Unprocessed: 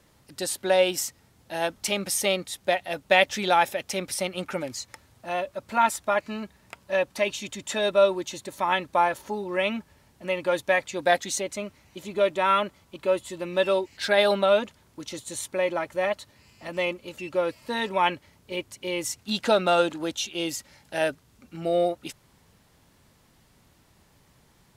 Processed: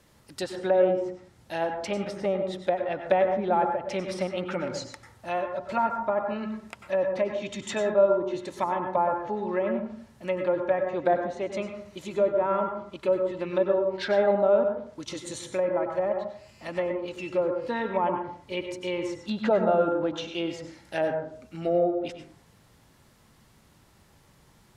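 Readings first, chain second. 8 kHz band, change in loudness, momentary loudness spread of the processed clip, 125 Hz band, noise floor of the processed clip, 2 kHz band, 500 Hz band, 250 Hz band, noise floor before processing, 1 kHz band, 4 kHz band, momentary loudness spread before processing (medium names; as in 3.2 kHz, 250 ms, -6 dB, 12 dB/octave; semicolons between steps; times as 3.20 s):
-13.5 dB, -1.5 dB, 13 LU, +1.5 dB, -59 dBFS, -8.5 dB, +0.5 dB, +1.5 dB, -61 dBFS, -2.5 dB, -10.5 dB, 15 LU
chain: low-pass that closes with the level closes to 790 Hz, closed at -22 dBFS; plate-style reverb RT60 0.55 s, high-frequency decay 0.35×, pre-delay 85 ms, DRR 4.5 dB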